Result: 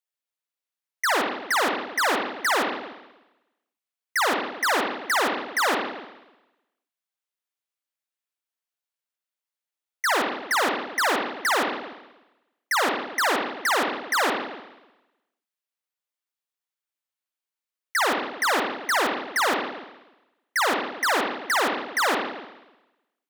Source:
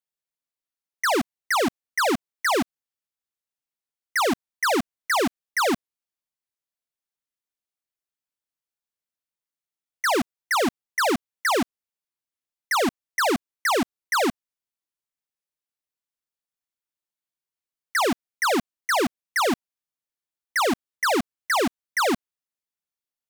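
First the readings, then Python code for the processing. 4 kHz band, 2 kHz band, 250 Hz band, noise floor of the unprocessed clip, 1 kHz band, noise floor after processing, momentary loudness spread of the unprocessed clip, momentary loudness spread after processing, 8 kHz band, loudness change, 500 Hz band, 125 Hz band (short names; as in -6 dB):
+1.5 dB, +2.0 dB, -5.5 dB, under -85 dBFS, +1.0 dB, under -85 dBFS, 3 LU, 6 LU, 0.0 dB, +0.5 dB, -2.0 dB, n/a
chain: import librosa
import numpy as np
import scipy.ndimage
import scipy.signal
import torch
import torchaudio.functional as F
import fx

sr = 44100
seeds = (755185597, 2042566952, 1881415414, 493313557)

y = fx.highpass(x, sr, hz=740.0, slope=6)
y = fx.rev_spring(y, sr, rt60_s=1.0, pass_ms=(50, 60), chirp_ms=25, drr_db=0.0)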